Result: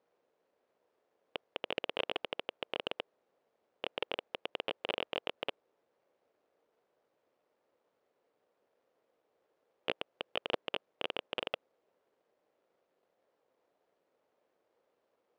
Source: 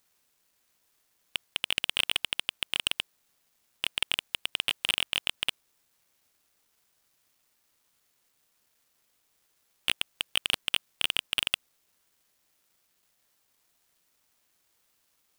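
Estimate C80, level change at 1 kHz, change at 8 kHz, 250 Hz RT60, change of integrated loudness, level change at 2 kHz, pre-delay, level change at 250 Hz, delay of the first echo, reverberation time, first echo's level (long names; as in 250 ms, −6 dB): no reverb audible, +1.0 dB, below −30 dB, no reverb audible, −10.0 dB, −10.0 dB, no reverb audible, +2.0 dB, no echo audible, no reverb audible, no echo audible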